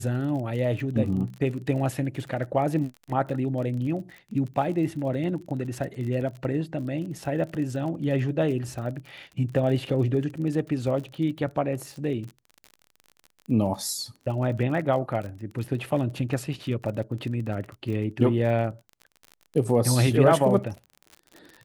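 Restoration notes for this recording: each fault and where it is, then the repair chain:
surface crackle 37 per second −34 dBFS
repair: click removal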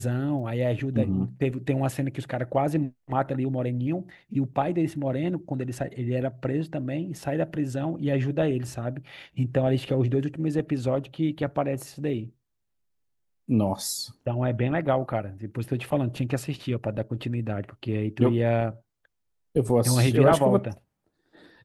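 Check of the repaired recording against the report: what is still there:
none of them is left

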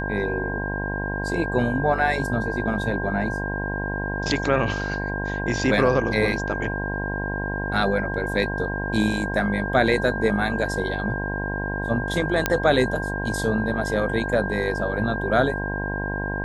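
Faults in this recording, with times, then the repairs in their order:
mains buzz 50 Hz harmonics 21 −29 dBFS
whistle 1,600 Hz −29 dBFS
0:12.46: click −4 dBFS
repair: click removal
notch filter 1,600 Hz, Q 30
hum removal 50 Hz, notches 21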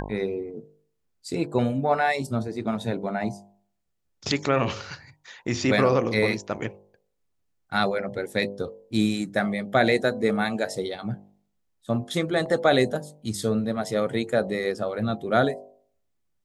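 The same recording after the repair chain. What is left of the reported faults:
none of them is left

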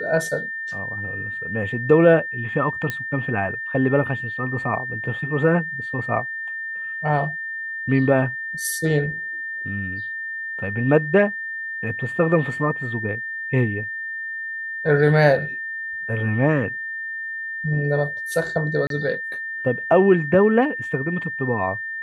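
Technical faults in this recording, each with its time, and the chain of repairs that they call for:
whistle 1,800 Hz −27 dBFS
0:02.90: click −11 dBFS
0:18.87–0:18.90: drop-out 32 ms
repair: click removal
notch filter 1,800 Hz, Q 30
repair the gap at 0:18.87, 32 ms

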